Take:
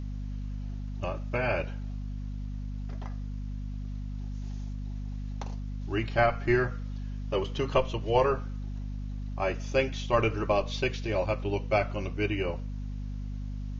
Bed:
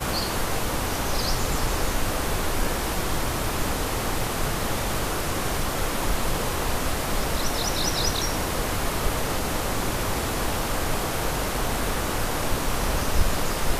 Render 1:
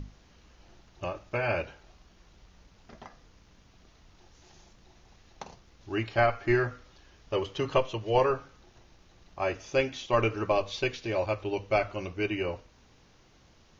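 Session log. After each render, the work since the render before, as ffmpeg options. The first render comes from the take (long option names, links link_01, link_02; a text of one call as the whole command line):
ffmpeg -i in.wav -af "bandreject=frequency=50:width_type=h:width=6,bandreject=frequency=100:width_type=h:width=6,bandreject=frequency=150:width_type=h:width=6,bandreject=frequency=200:width_type=h:width=6,bandreject=frequency=250:width_type=h:width=6" out.wav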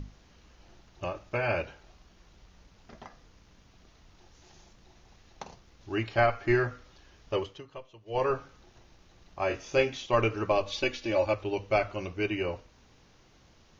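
ffmpeg -i in.wav -filter_complex "[0:a]asettb=1/sr,asplit=3[link_01][link_02][link_03];[link_01]atrim=end=9.484[link_04];[link_02]atrim=start=9.48:end=9.97,asetpts=PTS-STARTPTS,afade=type=in:duration=0.004:curve=qsin,afade=type=out:start_time=0.486:duration=0.004:curve=qsin,asplit=2[link_05][link_06];[link_06]adelay=25,volume=-5dB[link_07];[link_05][link_07]amix=inputs=2:normalize=0,atrim=end_sample=21609[link_08];[link_03]atrim=start=9.966[link_09];[link_04][link_08]acrossfade=duration=0.004:curve1=hsin:curve2=qsin[link_10];[link_10][link_09]acrossfade=duration=0.004:curve1=qsin:curve2=hsin,asettb=1/sr,asplit=3[link_11][link_12][link_13];[link_11]atrim=end=10.664[link_14];[link_12]atrim=start=10.66:end=11.34,asetpts=PTS-STARTPTS,afade=type=in:duration=0.004:curve=qsin,afade=type=out:start_time=0.676:duration=0.004:curve=qsin,aecho=1:1:3.5:0.65,atrim=end_sample=29988[link_15];[link_13]atrim=start=11.336[link_16];[link_14][link_15]acrossfade=duration=0.004:curve1=hsin:curve2=qsin[link_17];[link_17][link_16]acrossfade=duration=0.004:curve1=qsin:curve2=hsin,asplit=3[link_18][link_19][link_20];[link_18]atrim=end=7.63,asetpts=PTS-STARTPTS,afade=type=out:start_time=7.35:duration=0.28:silence=0.112202[link_21];[link_19]atrim=start=7.63:end=8.05,asetpts=PTS-STARTPTS,volume=-19dB[link_22];[link_20]atrim=start=8.05,asetpts=PTS-STARTPTS,afade=type=in:duration=0.28:silence=0.112202[link_23];[link_21][link_22][link_23]concat=n=3:v=0:a=1" out.wav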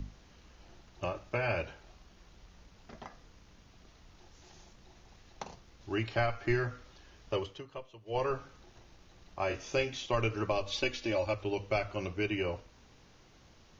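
ffmpeg -i in.wav -filter_complex "[0:a]acrossover=split=130|3000[link_01][link_02][link_03];[link_02]acompressor=threshold=-31dB:ratio=2.5[link_04];[link_01][link_04][link_03]amix=inputs=3:normalize=0" out.wav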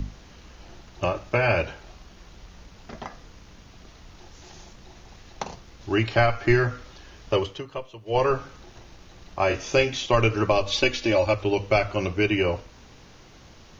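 ffmpeg -i in.wav -af "volume=10.5dB" out.wav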